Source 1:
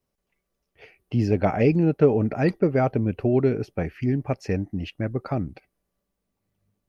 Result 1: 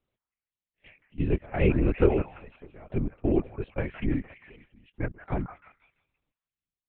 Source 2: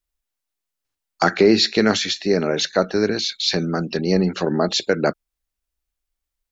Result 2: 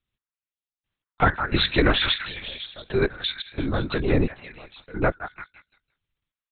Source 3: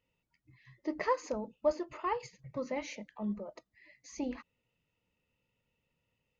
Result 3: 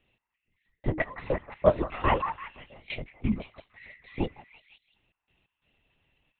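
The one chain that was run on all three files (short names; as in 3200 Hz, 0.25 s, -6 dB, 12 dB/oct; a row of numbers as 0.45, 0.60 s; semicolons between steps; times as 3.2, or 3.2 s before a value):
high shelf 2700 Hz +9.5 dB; step gate "x....x.x.xxx" 88 bpm -24 dB; on a send: delay with a stepping band-pass 0.171 s, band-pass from 1200 Hz, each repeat 0.7 oct, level -5.5 dB; on the sum: LPC vocoder at 8 kHz whisper; normalise peaks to -6 dBFS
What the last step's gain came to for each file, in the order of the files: -3.5, -2.0, +8.0 dB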